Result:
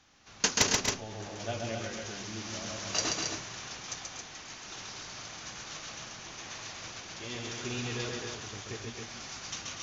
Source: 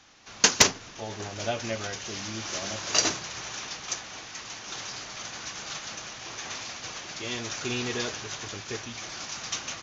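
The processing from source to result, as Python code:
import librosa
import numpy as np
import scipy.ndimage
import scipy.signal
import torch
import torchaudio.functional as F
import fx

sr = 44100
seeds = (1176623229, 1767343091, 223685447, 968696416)

p1 = fx.low_shelf(x, sr, hz=230.0, db=5.5)
p2 = p1 + fx.echo_multitap(p1, sr, ms=(132, 241, 272), db=(-3.5, -10.5, -5.5), dry=0)
y = p2 * 10.0 ** (-8.0 / 20.0)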